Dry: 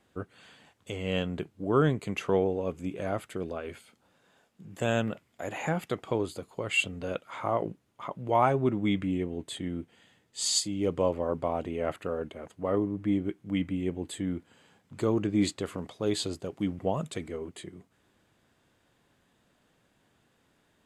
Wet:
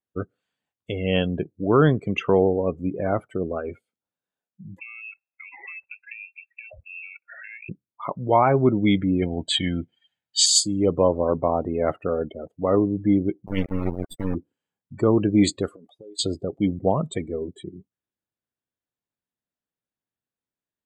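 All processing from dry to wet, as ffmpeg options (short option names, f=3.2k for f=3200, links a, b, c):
-filter_complex "[0:a]asettb=1/sr,asplit=3[a][b][c];[a]atrim=end=4.794[d];[b]atrim=start=4.79:end=7.69,asetpts=PTS-STARTPTS,afade=t=in:d=0.004:c=qsin,afade=t=out:st=2.896:d=0.004:c=qsin,equalizer=f=500:t=o:w=0.62:g=-5,acompressor=threshold=-42dB:ratio=6:attack=3.2:release=140:knee=1:detection=peak,lowpass=f=2.4k:t=q:w=0.5098,lowpass=f=2.4k:t=q:w=0.6013,lowpass=f=2.4k:t=q:w=0.9,lowpass=f=2.4k:t=q:w=2.563,afreqshift=-2800[e];[c]atrim=start=7.686[f];[d][e]acrossfade=d=0.004:c1=hsin:c2=qsin[g];[g][f]acrossfade=d=0.004:c1=qsin:c2=hsin,asettb=1/sr,asplit=3[h][i][j];[h]atrim=end=9.224[k];[i]atrim=start=9.22:end=10.46,asetpts=PTS-STARTPTS,afade=t=in:d=0.004:c=qsin,afade=t=out:st=1.236:d=0.004:c=qsin,lowpass=7.7k,equalizer=f=2.7k:w=0.31:g=10,aecho=1:1:1.3:0.47,atrim=end_sample=54684[l];[j]atrim=start=10.456[m];[k][l]acrossfade=d=0.004:c1=hsin:c2=qsin[n];[n][m]acrossfade=d=0.004:c1=qsin:c2=hsin,asettb=1/sr,asplit=3[o][p][q];[o]atrim=end=13.464[r];[p]atrim=start=13.46:end=14.35,asetpts=PTS-STARTPTS,afade=t=in:d=0.004:c=qsin,afade=t=out:st=0.886:d=0.004:c=qsin,bandreject=f=50:t=h:w=6,bandreject=f=100:t=h:w=6,bandreject=f=150:t=h:w=6,bandreject=f=200:t=h:w=6,bandreject=f=250:t=h:w=6,bandreject=f=300:t=h:w=6,bandreject=f=350:t=h:w=6,bandreject=f=400:t=h:w=6,aecho=1:1:1.1:0.37,atrim=end_sample=39249,acrusher=bits=3:dc=4:mix=0:aa=0.000001[s];[q]atrim=start=14.346[t];[r][s]acrossfade=d=0.004:c1=hsin:c2=qsin[u];[u][t]acrossfade=d=0.004:c1=qsin:c2=hsin,asettb=1/sr,asplit=3[v][w][x];[v]atrim=end=15.684[y];[w]atrim=start=15.68:end=16.19,asetpts=PTS-STARTPTS,afade=t=in:d=0.004:c=qsin,afade=t=out:st=0.506:d=0.004:c=qsin,highpass=f=360:p=1,acompressor=threshold=-44dB:ratio=12:attack=3.2:release=140:knee=1:detection=peak,highshelf=f=8.3k:g=8.5[z];[x]atrim=start=16.186[aa];[y][z]acrossfade=d=0.004:c1=hsin:c2=qsin[ab];[ab][aa]acrossfade=d=0.004:c1=qsin:c2=hsin,afftdn=nr=36:nf=-39,highshelf=f=11k:g=8,alimiter=level_in=13.5dB:limit=-1dB:release=50:level=0:latency=1,volume=-5.5dB"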